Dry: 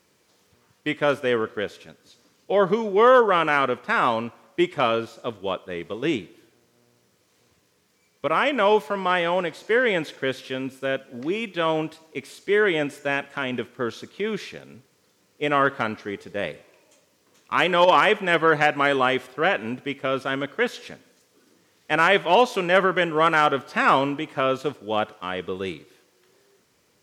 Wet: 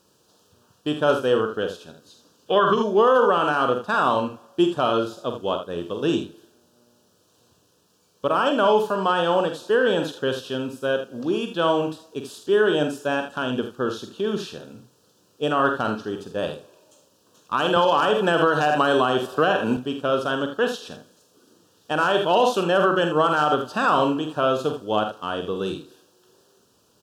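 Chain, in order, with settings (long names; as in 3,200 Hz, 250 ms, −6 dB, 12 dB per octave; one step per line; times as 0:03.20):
0:02.47–0:02.76: gain on a spectral selection 1,000–3,700 Hz +10 dB
loudspeakers that aren't time-aligned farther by 16 metres −8 dB, 27 metres −10 dB
brickwall limiter −10 dBFS, peak gain reduction 7.5 dB
Butterworth band-reject 2,100 Hz, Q 1.8
0:17.76–0:19.77: multiband upward and downward compressor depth 100%
level +2 dB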